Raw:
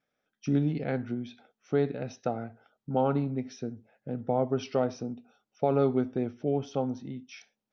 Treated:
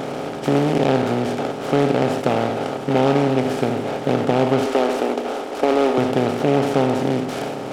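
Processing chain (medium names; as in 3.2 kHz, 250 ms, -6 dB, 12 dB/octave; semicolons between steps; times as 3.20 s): spectral levelling over time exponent 0.2; 4.66–5.98 s: high-pass 260 Hz 24 dB/octave; delay time shaken by noise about 1.8 kHz, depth 0.044 ms; trim +3.5 dB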